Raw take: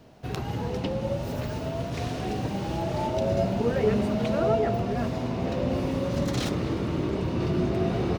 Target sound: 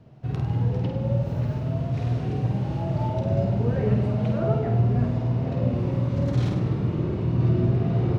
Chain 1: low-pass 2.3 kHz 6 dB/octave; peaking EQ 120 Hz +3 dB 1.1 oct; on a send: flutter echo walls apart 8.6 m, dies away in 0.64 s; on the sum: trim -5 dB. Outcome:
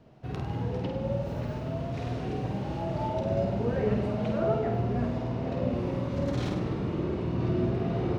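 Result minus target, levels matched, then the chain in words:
125 Hz band -3.5 dB
low-pass 2.3 kHz 6 dB/octave; peaking EQ 120 Hz +13.5 dB 1.1 oct; on a send: flutter echo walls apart 8.6 m, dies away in 0.64 s; on the sum: trim -5 dB

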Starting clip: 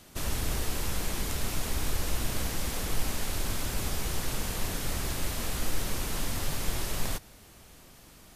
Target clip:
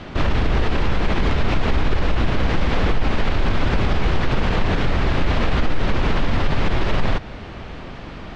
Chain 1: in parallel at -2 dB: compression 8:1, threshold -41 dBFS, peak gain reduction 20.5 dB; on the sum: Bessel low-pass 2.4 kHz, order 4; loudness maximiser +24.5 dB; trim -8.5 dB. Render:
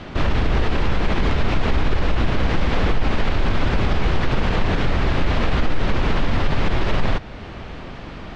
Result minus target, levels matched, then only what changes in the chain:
compression: peak gain reduction +5.5 dB
change: compression 8:1, threshold -34.5 dBFS, peak gain reduction 14.5 dB

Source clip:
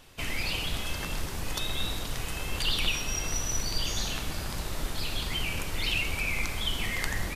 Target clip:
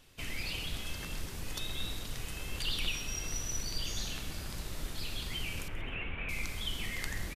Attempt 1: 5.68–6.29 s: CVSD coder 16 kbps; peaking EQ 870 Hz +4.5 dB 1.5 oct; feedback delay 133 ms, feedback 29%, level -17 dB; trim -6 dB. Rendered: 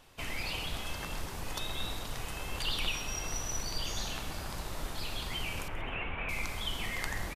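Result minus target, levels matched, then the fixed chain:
1 kHz band +7.0 dB
5.68–6.29 s: CVSD coder 16 kbps; peaking EQ 870 Hz -5 dB 1.5 oct; feedback delay 133 ms, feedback 29%, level -17 dB; trim -6 dB

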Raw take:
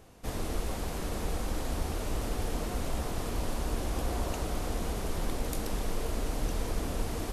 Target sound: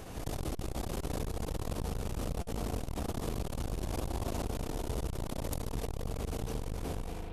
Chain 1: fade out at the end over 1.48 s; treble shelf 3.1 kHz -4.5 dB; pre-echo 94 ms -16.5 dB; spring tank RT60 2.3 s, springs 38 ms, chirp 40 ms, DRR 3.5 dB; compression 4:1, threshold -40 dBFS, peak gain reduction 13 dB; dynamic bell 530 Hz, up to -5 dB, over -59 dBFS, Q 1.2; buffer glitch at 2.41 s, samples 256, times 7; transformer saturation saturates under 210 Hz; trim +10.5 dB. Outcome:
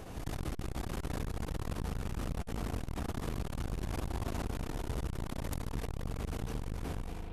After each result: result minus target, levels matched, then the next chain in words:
8 kHz band -3.0 dB; 2 kHz band +3.0 dB
fade out at the end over 1.48 s; pre-echo 94 ms -16.5 dB; spring tank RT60 2.3 s, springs 38 ms, chirp 40 ms, DRR 3.5 dB; compression 4:1, threshold -40 dBFS, peak gain reduction 13 dB; dynamic bell 530 Hz, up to -5 dB, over -59 dBFS, Q 1.2; buffer glitch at 2.41 s, samples 256, times 7; transformer saturation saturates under 210 Hz; trim +10.5 dB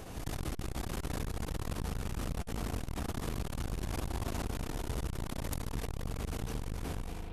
2 kHz band +4.0 dB
fade out at the end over 1.48 s; pre-echo 94 ms -16.5 dB; spring tank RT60 2.3 s, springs 38 ms, chirp 40 ms, DRR 3.5 dB; compression 4:1, threshold -40 dBFS, peak gain reduction 13 dB; dynamic bell 1.7 kHz, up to -5 dB, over -59 dBFS, Q 1.2; buffer glitch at 2.41 s, samples 256, times 7; transformer saturation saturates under 210 Hz; trim +10.5 dB

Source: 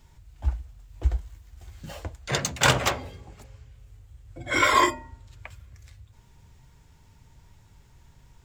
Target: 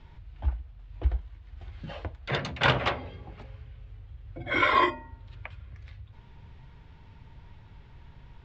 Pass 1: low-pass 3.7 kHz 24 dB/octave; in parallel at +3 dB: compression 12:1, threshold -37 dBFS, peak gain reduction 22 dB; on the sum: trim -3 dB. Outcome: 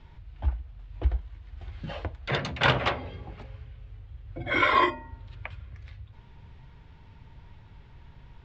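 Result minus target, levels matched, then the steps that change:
compression: peak gain reduction -8 dB
change: compression 12:1, threshold -45.5 dBFS, peak gain reduction 30 dB

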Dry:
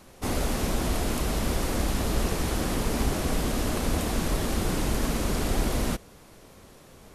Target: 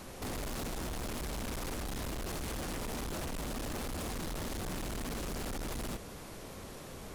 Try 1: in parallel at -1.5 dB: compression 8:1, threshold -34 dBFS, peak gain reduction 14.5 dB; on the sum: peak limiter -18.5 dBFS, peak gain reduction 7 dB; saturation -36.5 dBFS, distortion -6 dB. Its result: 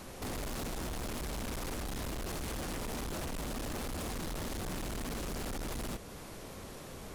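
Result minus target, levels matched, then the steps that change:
compression: peak gain reduction +6.5 dB
change: compression 8:1, threshold -26.5 dBFS, peak gain reduction 8 dB

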